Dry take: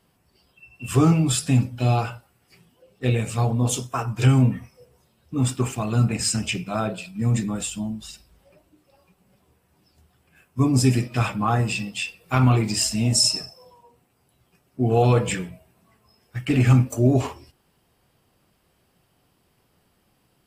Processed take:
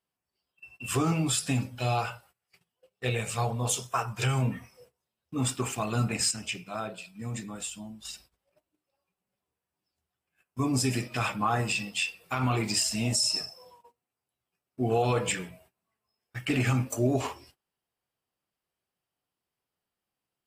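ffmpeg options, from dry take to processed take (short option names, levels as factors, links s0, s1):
-filter_complex "[0:a]asettb=1/sr,asplit=3[s0][s1][s2];[s0]atrim=end=1.804[s3];[s1]atrim=start=1.8:end=4.46,asetpts=PTS-STARTPTS,afade=t=in:d=0.004:c=qsin,afade=t=out:st=2.656:d=0.004:c=qsin,equalizer=f=280:t=o:w=0.34:g=-14[s4];[s2]atrim=start=4.456[s5];[s3][s4]acrossfade=d=0.004:c1=hsin:c2=qsin[s6];[s6][s5]acrossfade=d=0.004:c1=qsin:c2=hsin,asplit=3[s7][s8][s9];[s7]atrim=end=6.312[s10];[s8]atrim=start=6.308:end=8.052,asetpts=PTS-STARTPTS,volume=0.473[s11];[s9]atrim=start=8.048[s12];[s10][s11]acrossfade=d=0.004:c1=hsin:c2=hsin[s13];[s13][s12]acrossfade=d=0.004:c1=hsin:c2=hsin,agate=range=0.1:threshold=0.00251:ratio=16:detection=peak,lowshelf=f=360:g=-10,alimiter=limit=0.15:level=0:latency=1:release=117"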